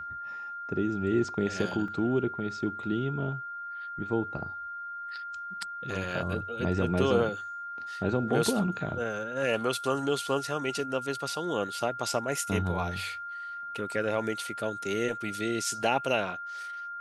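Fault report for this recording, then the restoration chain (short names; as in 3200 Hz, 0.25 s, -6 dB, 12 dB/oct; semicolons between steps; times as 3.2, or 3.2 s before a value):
tone 1400 Hz -36 dBFS
1.88 gap 2.6 ms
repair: notch 1400 Hz, Q 30; interpolate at 1.88, 2.6 ms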